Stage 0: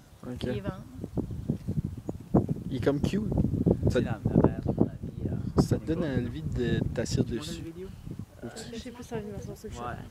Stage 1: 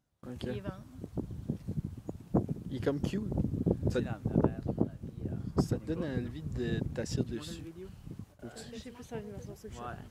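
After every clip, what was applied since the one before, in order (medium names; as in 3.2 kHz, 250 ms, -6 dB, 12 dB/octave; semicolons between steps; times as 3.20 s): gate with hold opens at -39 dBFS; trim -5.5 dB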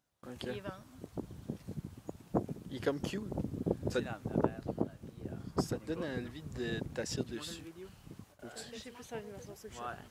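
bass shelf 310 Hz -11.5 dB; trim +2.5 dB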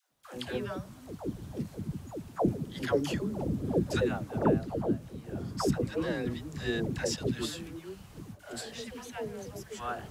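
phase dispersion lows, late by 121 ms, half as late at 500 Hz; trim +6 dB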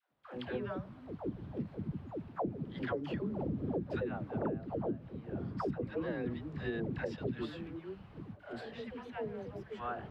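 bass shelf 75 Hz -8 dB; compression 10:1, threshold -31 dBFS, peak gain reduction 11 dB; distance through air 410 m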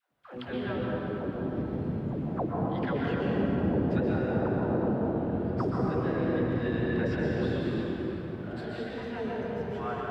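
plate-style reverb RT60 3.9 s, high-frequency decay 0.6×, pre-delay 110 ms, DRR -4.5 dB; trim +2.5 dB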